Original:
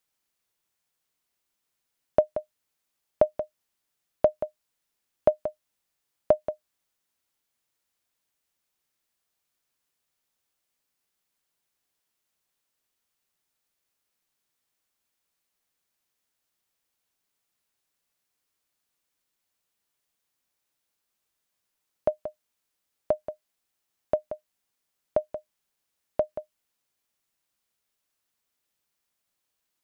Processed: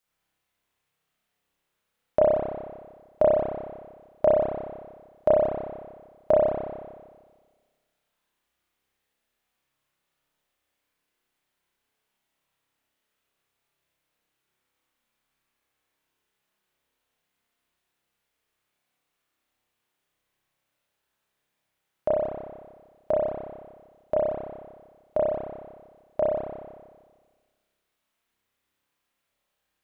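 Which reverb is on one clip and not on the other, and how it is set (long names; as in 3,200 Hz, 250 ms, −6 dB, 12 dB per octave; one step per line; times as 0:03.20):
spring reverb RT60 1.5 s, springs 30 ms, chirp 40 ms, DRR −8 dB
level −2.5 dB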